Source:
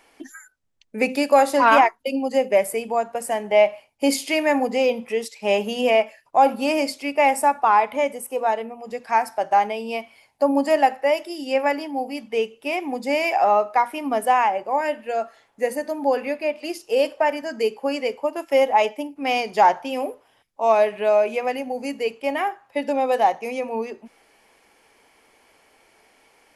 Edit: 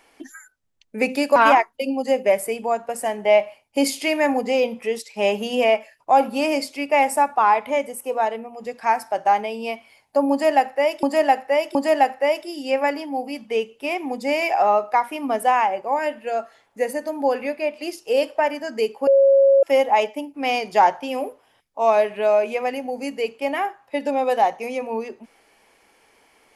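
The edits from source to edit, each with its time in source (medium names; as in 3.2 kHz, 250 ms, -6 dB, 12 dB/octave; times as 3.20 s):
1.36–1.62 s: delete
10.57–11.29 s: loop, 3 plays
17.89–18.45 s: bleep 548 Hz -10.5 dBFS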